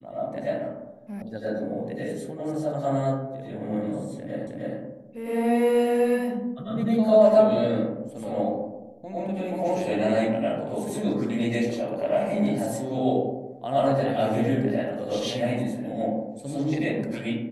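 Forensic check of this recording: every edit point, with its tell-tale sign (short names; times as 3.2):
1.22 sound cut off
4.47 repeat of the last 0.31 s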